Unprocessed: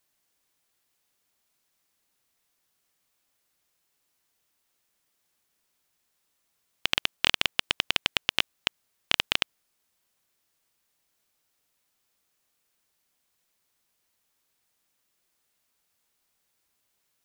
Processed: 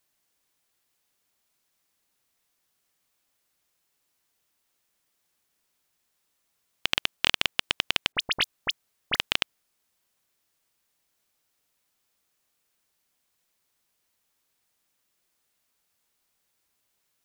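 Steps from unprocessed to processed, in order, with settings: 8.12–9.16 dispersion highs, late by 41 ms, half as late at 2600 Hz

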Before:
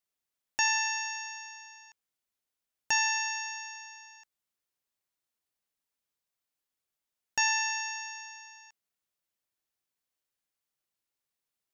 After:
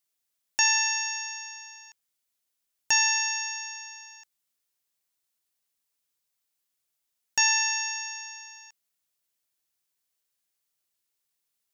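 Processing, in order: high shelf 3000 Hz +8.5 dB

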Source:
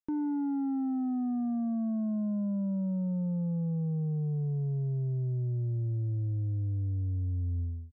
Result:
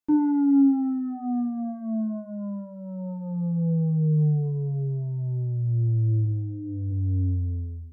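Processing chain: 6.25–6.9 Bessel low-pass 540 Hz, order 2; FDN reverb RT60 0.34 s, low-frequency decay 0.95×, high-frequency decay 0.85×, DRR -3 dB; gain +1 dB

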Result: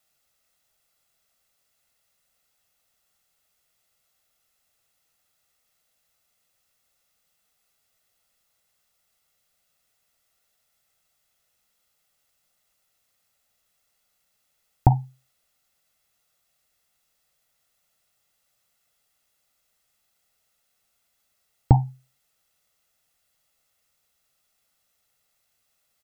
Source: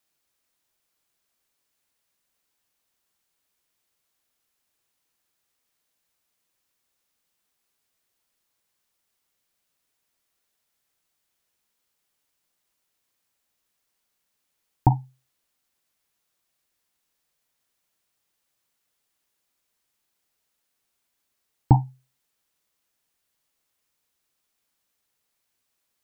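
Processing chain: comb 1.5 ms, depth 50%; compressor, threshold -14 dBFS, peak gain reduction 6 dB; gain +3.5 dB

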